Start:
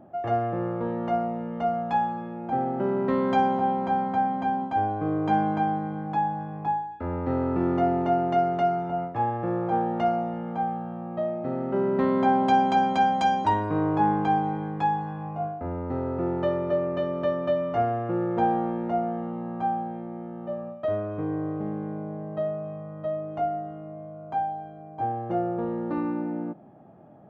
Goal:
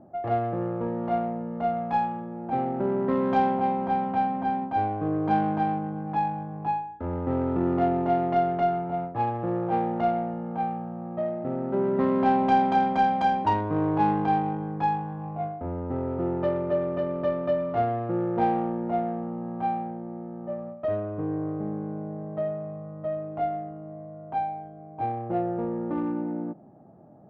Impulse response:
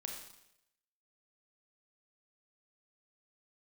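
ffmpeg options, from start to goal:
-af "adynamicsmooth=sensitivity=1:basefreq=1.3k"

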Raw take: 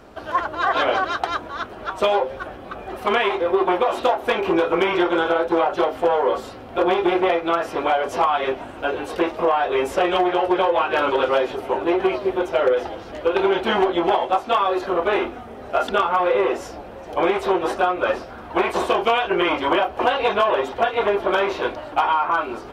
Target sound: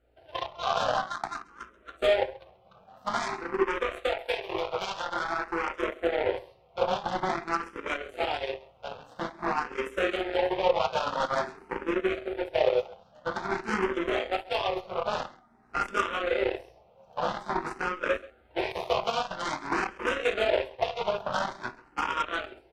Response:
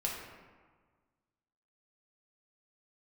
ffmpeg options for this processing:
-filter_complex "[1:a]atrim=start_sample=2205,atrim=end_sample=3528[a];[0:a][a]afir=irnorm=-1:irlink=0,aeval=exprs='val(0)+0.00447*(sin(2*PI*60*n/s)+sin(2*PI*2*60*n/s)/2+sin(2*PI*3*60*n/s)/3+sin(2*PI*4*60*n/s)/4+sin(2*PI*5*60*n/s)/5)':c=same,highshelf=f=4.6k:g=-3,bandreject=f=720:w=18,aeval=exprs='0.596*(cos(1*acos(clip(val(0)/0.596,-1,1)))-cos(1*PI/2))+0.075*(cos(7*acos(clip(val(0)/0.596,-1,1)))-cos(7*PI/2))':c=same,asettb=1/sr,asplit=3[b][c][d];[b]atrim=end=3.654[e];[c]atrim=start=3.65:end=5.83,asetpts=PTS-STARTPTS,afade=t=in:d=0.004:c=qsin,afade=t=out:st=2.176:d=0.004:c=qsin,equalizer=f=190:t=o:w=1.6:g=-10.5[f];[d]atrim=start=5.826[g];[e][f]acrossfade=d=0.004:c1=hsin:c2=qsin[h];[h][g]acrossfade=d=0.004:c1=qsin:c2=hsin,aecho=1:1:134:0.0841,asplit=2[i][j];[j]afreqshift=0.49[k];[i][k]amix=inputs=2:normalize=1,volume=-5.5dB"

